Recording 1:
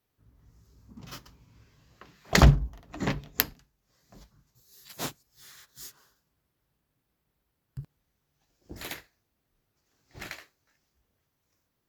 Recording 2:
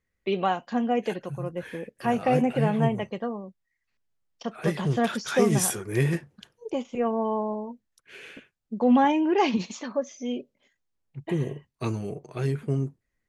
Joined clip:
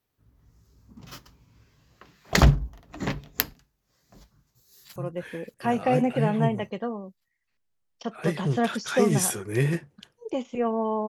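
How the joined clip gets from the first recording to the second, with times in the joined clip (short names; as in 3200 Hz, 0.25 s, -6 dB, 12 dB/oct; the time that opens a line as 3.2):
recording 1
4.38–4.96 echo throw 0.58 s, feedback 50%, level -16.5 dB
4.96 switch to recording 2 from 1.36 s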